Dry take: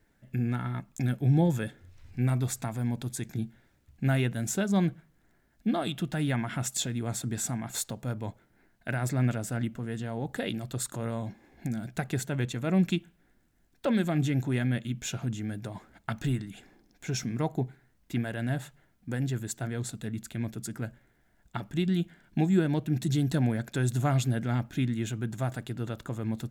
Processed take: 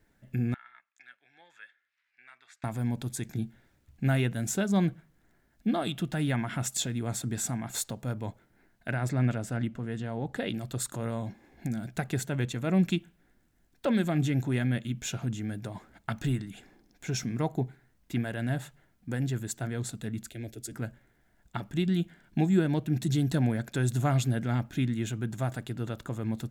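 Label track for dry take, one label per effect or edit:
0.540000	2.640000	ladder band-pass 2.1 kHz, resonance 40%
8.900000	10.540000	treble shelf 8.2 kHz -11 dB
20.300000	20.720000	static phaser centre 440 Hz, stages 4

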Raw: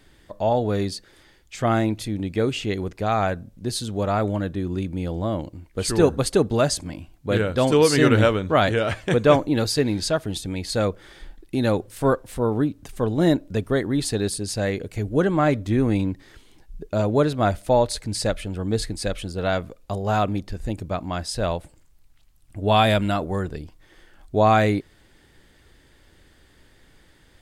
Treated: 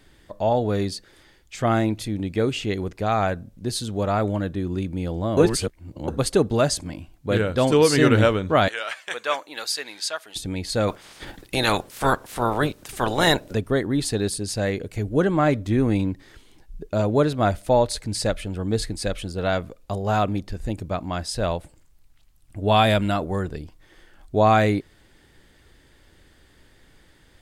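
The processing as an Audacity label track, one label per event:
5.370000	6.080000	reverse
8.680000	10.360000	high-pass 1.1 kHz
10.870000	13.530000	spectral peaks clipped ceiling under each frame's peak by 23 dB

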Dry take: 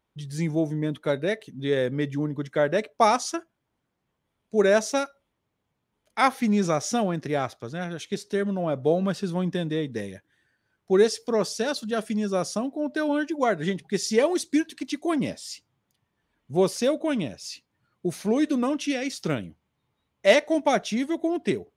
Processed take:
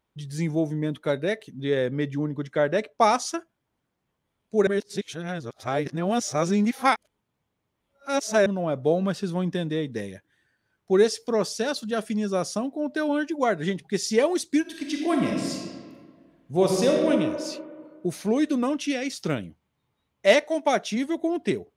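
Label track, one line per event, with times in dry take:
1.600000	3.080000	treble shelf 7.3 kHz -> 11 kHz -7.5 dB
4.670000	8.460000	reverse
14.610000	17.110000	reverb throw, RT60 1.8 s, DRR 0 dB
20.470000	20.950000	high-pass 480 Hz -> 130 Hz

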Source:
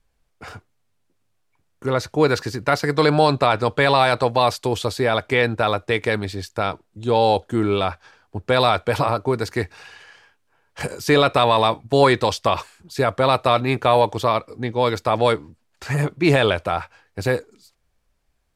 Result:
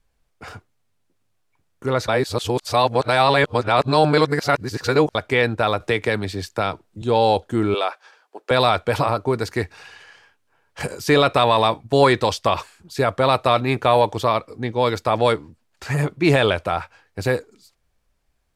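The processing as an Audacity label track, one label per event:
2.080000	5.150000	reverse
5.800000	7.020000	three bands compressed up and down depth 40%
7.740000	8.510000	high-pass 400 Hz 24 dB/octave

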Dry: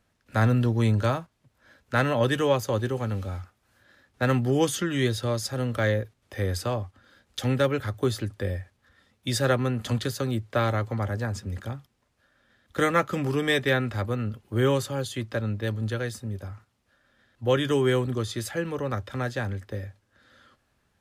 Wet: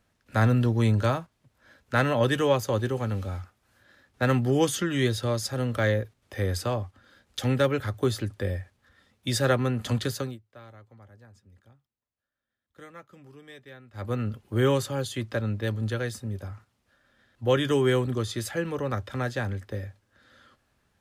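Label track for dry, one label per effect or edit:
10.160000	14.140000	dip -23.5 dB, fades 0.22 s

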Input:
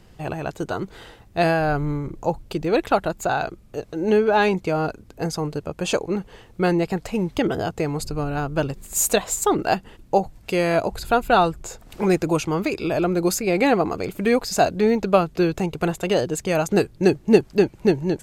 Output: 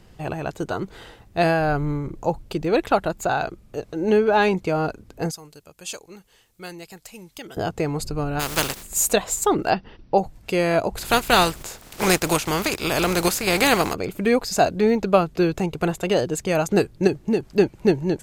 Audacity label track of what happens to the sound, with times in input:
5.310000	7.570000	pre-emphasis filter coefficient 0.9
8.390000	8.820000	spectral contrast reduction exponent 0.31
9.700000	10.180000	brick-wall FIR low-pass 6 kHz
10.960000	13.930000	spectral contrast reduction exponent 0.51
17.070000	17.500000	compression 2.5:1, threshold -19 dBFS

